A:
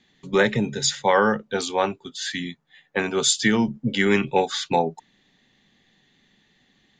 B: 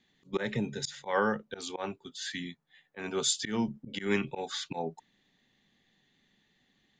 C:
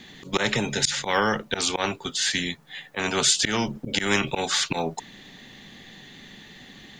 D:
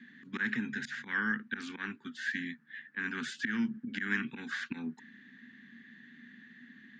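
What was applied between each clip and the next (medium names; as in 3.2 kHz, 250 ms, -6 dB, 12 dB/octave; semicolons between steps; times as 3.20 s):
slow attack 130 ms; trim -8.5 dB
spectrum-flattening compressor 2:1; trim +8.5 dB
two resonant band-passes 630 Hz, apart 2.8 oct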